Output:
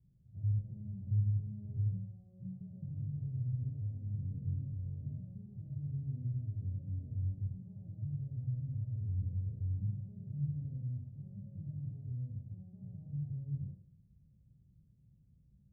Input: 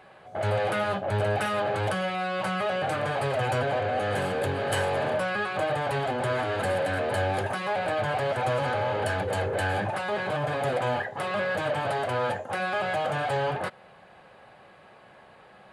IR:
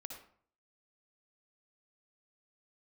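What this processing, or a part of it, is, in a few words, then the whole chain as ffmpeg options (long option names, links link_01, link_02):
club heard from the street: -filter_complex "[0:a]alimiter=limit=-22dB:level=0:latency=1,lowpass=frequency=140:width=0.5412,lowpass=frequency=140:width=1.3066[link_01];[1:a]atrim=start_sample=2205[link_02];[link_01][link_02]afir=irnorm=-1:irlink=0,volume=7.5dB"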